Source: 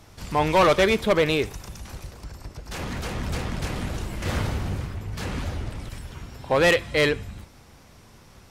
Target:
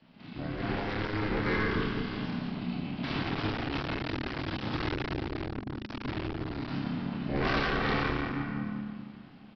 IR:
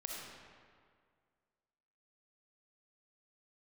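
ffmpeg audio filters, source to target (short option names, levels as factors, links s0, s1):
-filter_complex "[0:a]equalizer=f=520:t=o:w=0.48:g=-10.5,acrossover=split=430|3000[s0][s1][s2];[s1]acompressor=threshold=0.00447:ratio=2[s3];[s0][s3][s2]amix=inputs=3:normalize=0,atempo=0.89,dynaudnorm=f=200:g=13:m=3.98,adynamicequalizer=threshold=0.00794:dfrequency=360:dqfactor=6.2:tfrequency=360:tqfactor=6.2:attack=5:release=100:ratio=0.375:range=2.5:mode=cutabove:tftype=bell,asetrate=22696,aresample=44100,atempo=1.94306,asplit=2[s4][s5];[s5]adelay=29,volume=0.75[s6];[s4][s6]amix=inputs=2:normalize=0,asplit=2[s7][s8];[s8]adelay=173,lowpass=f=2000:p=1,volume=0.355,asplit=2[s9][s10];[s10]adelay=173,lowpass=f=2000:p=1,volume=0.28,asplit=2[s11][s12];[s12]adelay=173,lowpass=f=2000:p=1,volume=0.28[s13];[s7][s9][s11][s13]amix=inputs=4:normalize=0[s14];[1:a]atrim=start_sample=2205[s15];[s14][s15]afir=irnorm=-1:irlink=0,aresample=11025,asoftclip=type=hard:threshold=0.133,aresample=44100,aeval=exprs='val(0)*sin(2*PI*210*n/s)':c=same,afftfilt=real='re*lt(hypot(re,im),0.447)':imag='im*lt(hypot(re,im),0.447)':win_size=1024:overlap=0.75,volume=0.708"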